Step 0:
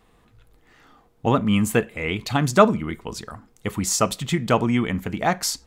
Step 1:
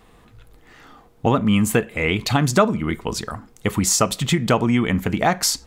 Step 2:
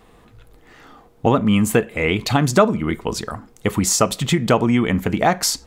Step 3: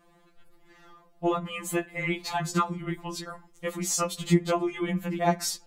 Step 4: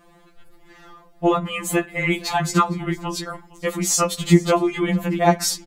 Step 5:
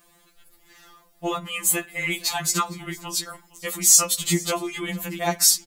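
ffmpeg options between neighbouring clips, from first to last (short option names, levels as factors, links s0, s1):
-af "acompressor=threshold=0.0708:ratio=2.5,volume=2.24"
-af "equalizer=f=470:t=o:w=2:g=3"
-af "afftfilt=real='re*2.83*eq(mod(b,8),0)':imag='im*2.83*eq(mod(b,8),0)':win_size=2048:overlap=0.75,volume=0.422"
-af "aecho=1:1:458:0.0841,volume=2.51"
-af "crystalizer=i=7:c=0,volume=0.299"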